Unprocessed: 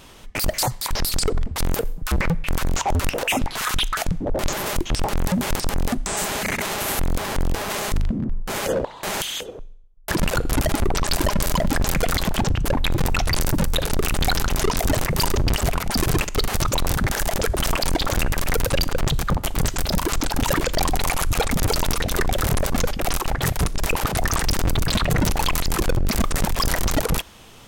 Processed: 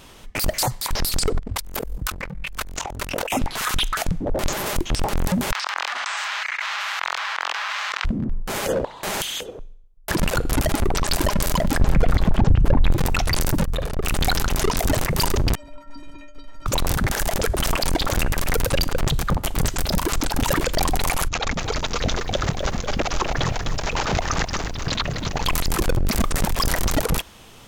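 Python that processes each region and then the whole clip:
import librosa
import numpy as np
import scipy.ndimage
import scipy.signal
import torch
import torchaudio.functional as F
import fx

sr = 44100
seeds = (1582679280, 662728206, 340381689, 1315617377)

y = fx.chain(x, sr, fx.ring_mod(carrier_hz=21.0),
    fx.over_compress(threshold_db=-30.0, ratio=-1.0), at=(1.39, 3.32))
y = fx.chain(y, sr, fx.highpass(hz=1100.0, slope=24),
    fx.air_absorb(metres=190.0),
    fx.env_flatten(amount_pct=100), at=(5.52, 8.05))
y = fx.chain(y, sr, fx.lowpass(hz=1400.0, slope=6),
    fx.low_shelf(hz=190.0, db=7.5), at=(11.81, 12.92))
y = fx.chain(y, sr, fx.high_shelf(hz=2400.0, db=-12.0),
    fx.comb(ms=1.7, depth=0.32),
    fx.tube_stage(drive_db=17.0, bias=0.45), at=(13.64, 14.06))
y = fx.chain(y, sr, fx.spacing_loss(db_at_10k=23),
    fx.stiff_resonator(f0_hz=280.0, decay_s=0.43, stiffness=0.03), at=(15.55, 16.66))
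y = fx.chain(y, sr, fx.steep_lowpass(hz=7100.0, slope=96),
    fx.over_compress(threshold_db=-23.0, ratio=-0.5),
    fx.echo_crushed(ms=254, feedback_pct=35, bits=8, wet_db=-8), at=(21.28, 25.46))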